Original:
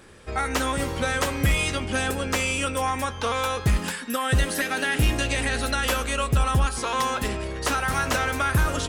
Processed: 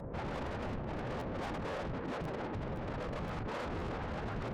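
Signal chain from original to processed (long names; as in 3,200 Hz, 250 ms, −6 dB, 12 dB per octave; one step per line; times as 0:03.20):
downward compressor 2.5 to 1, threshold −27 dBFS, peak gain reduction 7 dB
brickwall limiter −28 dBFS, peak gain reduction 10.5 dB
Gaussian smoothing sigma 9.9 samples
harmonic generator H 4 −31 dB, 5 −42 dB, 6 −9 dB, 8 −20 dB, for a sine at −28 dBFS
notch comb filter 340 Hz
random phases in short frames
tube saturation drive 50 dB, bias 0.3
phase-vocoder stretch with locked phases 0.51×
regular buffer underruns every 0.52 s, samples 512, repeat, from 0:00.67
level +15 dB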